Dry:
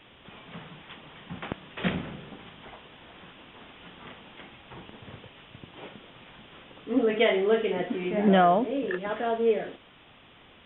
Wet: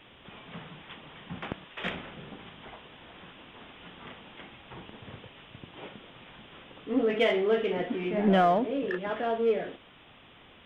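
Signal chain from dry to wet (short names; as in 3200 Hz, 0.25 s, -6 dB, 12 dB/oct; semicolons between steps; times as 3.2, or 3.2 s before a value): 1.64–2.17 bell 140 Hz -11.5 dB 2.8 oct; in parallel at -7 dB: soft clip -27.5 dBFS, distortion -6 dB; on the sum: gain -3.5 dB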